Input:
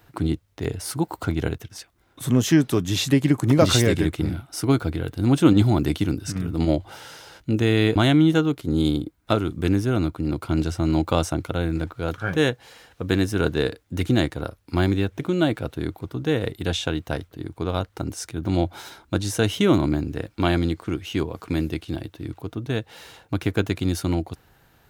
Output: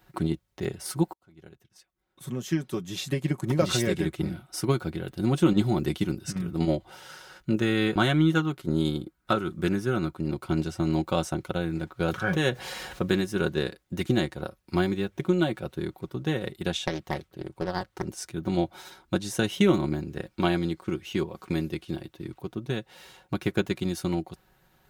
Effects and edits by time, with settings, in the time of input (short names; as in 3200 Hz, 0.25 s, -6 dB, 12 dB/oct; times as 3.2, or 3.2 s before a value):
1.13–4.4 fade in
7.09–10.13 bell 1400 Hz +6.5 dB 0.56 oct
12–13.21 fast leveller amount 50%
16.84–18.06 Doppler distortion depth 0.73 ms
whole clip: comb 5.4 ms, depth 64%; transient shaper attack +4 dB, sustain -1 dB; maximiser +2 dB; gain -8.5 dB